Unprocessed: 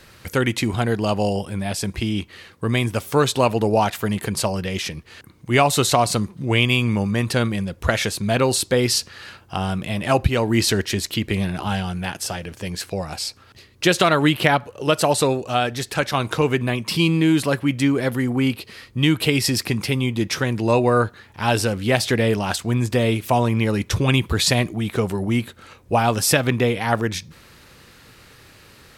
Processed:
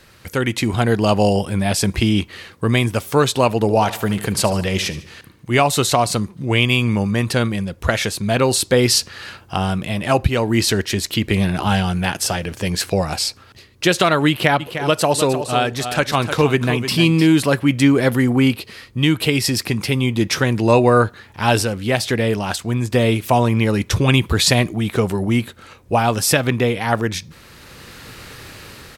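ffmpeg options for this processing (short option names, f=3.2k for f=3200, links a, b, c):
-filter_complex "[0:a]asettb=1/sr,asplit=3[a][b][c];[a]atrim=end=3.554[d];[b]atrim=start=3.55:end=5.6,asetpts=PTS-STARTPTS,afade=t=in:d=0.004:c=qsin,afade=t=out:st=2.046:d=0.004:c=qsin,aecho=1:1:74|148|222|296|370:0.178|0.0871|0.0427|0.0209|0.0103,atrim=end_sample=90405[e];[c]atrim=start=5.596[f];[d][e]acrossfade=d=0.004:c1=hsin:c2=qsin[g];[g][f]acrossfade=d=0.004:c1=qsin:c2=hsin,asplit=3[h][i][j];[h]afade=t=out:st=14.59:d=0.02[k];[i]aecho=1:1:305:0.316,afade=t=in:st=14.59:d=0.02,afade=t=out:st=17.26:d=0.02[l];[j]afade=t=in:st=17.26:d=0.02[m];[k][l][m]amix=inputs=3:normalize=0,asplit=3[n][o][p];[n]atrim=end=21.632[q];[o]atrim=start=21.628:end=22.942,asetpts=PTS-STARTPTS,volume=-3.5dB[r];[p]atrim=start=22.938[s];[q][r]acrossfade=d=0.004:c1=hsin:c2=hsin[t];[t][s]acrossfade=d=0.004:c1=hsin:c2=hsin,dynaudnorm=f=190:g=7:m=11.5dB,volume=-1dB"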